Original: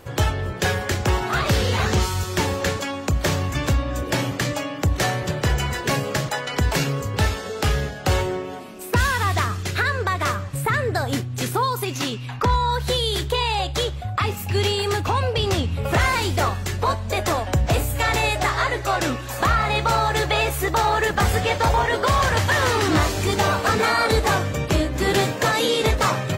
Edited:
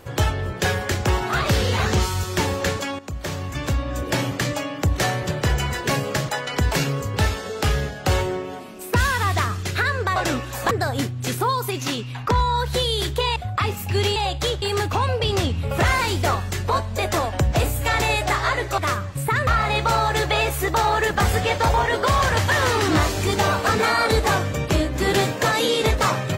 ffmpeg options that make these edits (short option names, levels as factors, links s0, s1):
-filter_complex "[0:a]asplit=9[s0][s1][s2][s3][s4][s5][s6][s7][s8];[s0]atrim=end=2.99,asetpts=PTS-STARTPTS,afade=t=out:st=2.986:d=0.004:c=hsin:silence=0.237137[s9];[s1]atrim=start=2.99:end=10.162,asetpts=PTS-STARTPTS,afade=t=in:d=1.1:silence=0.237137[s10];[s2]atrim=start=18.918:end=19.472[s11];[s3]atrim=start=10.848:end=13.502[s12];[s4]atrim=start=13.958:end=14.762[s13];[s5]atrim=start=13.498:end=13.962[s14];[s6]atrim=start=14.758:end=18.922[s15];[s7]atrim=start=10.158:end=10.852[s16];[s8]atrim=start=19.468[s17];[s9][s10]concat=n=2:v=0:a=1[s18];[s18][s11]acrossfade=d=0.004:c1=hsin:c2=hsin[s19];[s19][s12]acrossfade=d=0.004:c1=hsin:c2=hsin[s20];[s20][s13]acrossfade=d=0.004:c1=hsin:c2=hsin[s21];[s21][s14]acrossfade=d=0.004:c1=hsin:c2=hsin[s22];[s22][s15]acrossfade=d=0.004:c1=hsin:c2=hsin[s23];[s23][s16]acrossfade=d=0.004:c1=hsin:c2=hsin[s24];[s24][s17]acrossfade=d=0.004:c1=hsin:c2=hsin"